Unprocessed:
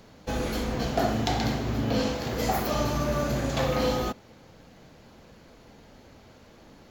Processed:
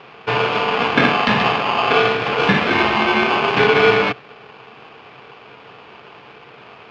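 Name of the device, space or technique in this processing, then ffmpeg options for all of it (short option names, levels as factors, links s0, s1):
ring modulator pedal into a guitar cabinet: -af "aeval=exprs='val(0)*sgn(sin(2*PI*950*n/s))':c=same,highpass=84,equalizer=f=130:t=q:w=4:g=9,equalizer=f=210:t=q:w=4:g=7,equalizer=f=430:t=q:w=4:g=9,equalizer=f=2400:t=q:w=4:g=8,lowpass=f=3800:w=0.5412,lowpass=f=3800:w=1.3066,volume=2.66"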